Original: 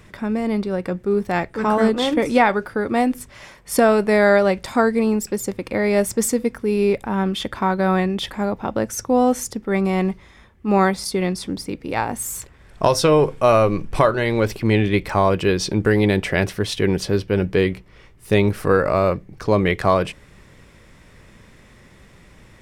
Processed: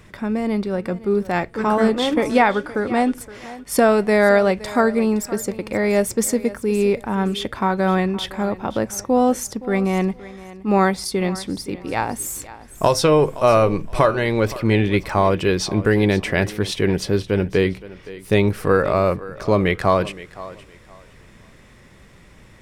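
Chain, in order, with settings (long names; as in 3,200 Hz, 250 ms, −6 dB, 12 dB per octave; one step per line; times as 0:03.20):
0:02.51–0:03.18: low-pass filter 10,000 Hz 24 dB per octave
on a send: feedback echo with a high-pass in the loop 518 ms, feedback 24%, high-pass 200 Hz, level −16.5 dB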